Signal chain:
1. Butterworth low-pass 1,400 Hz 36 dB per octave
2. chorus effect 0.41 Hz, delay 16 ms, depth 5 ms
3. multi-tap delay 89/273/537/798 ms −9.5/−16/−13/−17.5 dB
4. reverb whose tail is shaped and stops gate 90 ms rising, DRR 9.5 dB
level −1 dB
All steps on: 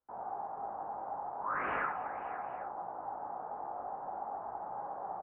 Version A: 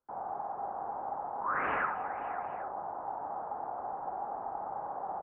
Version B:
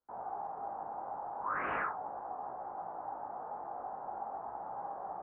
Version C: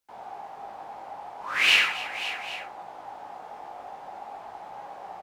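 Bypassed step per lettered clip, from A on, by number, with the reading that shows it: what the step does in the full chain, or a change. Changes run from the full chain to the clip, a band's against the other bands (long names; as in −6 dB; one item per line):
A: 2, change in integrated loudness +3.0 LU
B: 3, echo-to-direct ratio −4.5 dB to −9.5 dB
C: 1, 2 kHz band +16.5 dB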